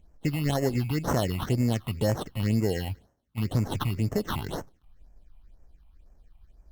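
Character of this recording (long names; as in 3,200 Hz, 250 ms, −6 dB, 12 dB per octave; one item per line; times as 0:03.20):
aliases and images of a low sample rate 2,400 Hz, jitter 0%
phaser sweep stages 6, 2 Hz, lowest notch 430–3,600 Hz
Opus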